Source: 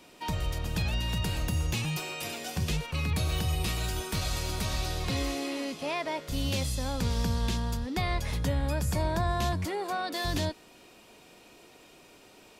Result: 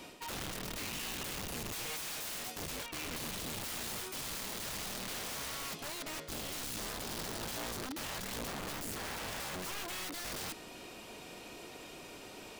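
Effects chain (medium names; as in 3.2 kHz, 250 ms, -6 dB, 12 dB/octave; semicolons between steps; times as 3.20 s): reverse; compression 12:1, threshold -40 dBFS, peak gain reduction 16.5 dB; reverse; integer overflow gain 41.5 dB; trim +5.5 dB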